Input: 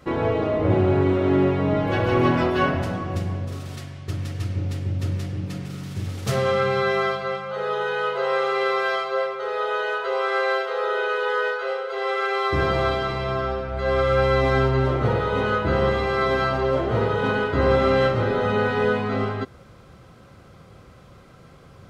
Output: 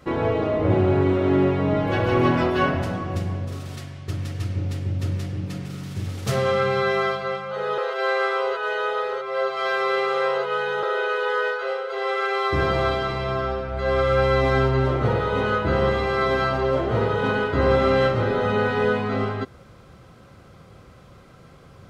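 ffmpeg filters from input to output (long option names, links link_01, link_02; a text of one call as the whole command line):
ffmpeg -i in.wav -filter_complex "[0:a]asplit=3[link_01][link_02][link_03];[link_01]atrim=end=7.782[link_04];[link_02]atrim=start=7.778:end=10.832,asetpts=PTS-STARTPTS,areverse[link_05];[link_03]atrim=start=10.828[link_06];[link_04][link_05]acrossfade=duration=0.004:curve1=hsin:curve2=hsin[link_07];[link_07][link_06]acrossfade=duration=0.004:curve1=hsin:curve2=hsin" out.wav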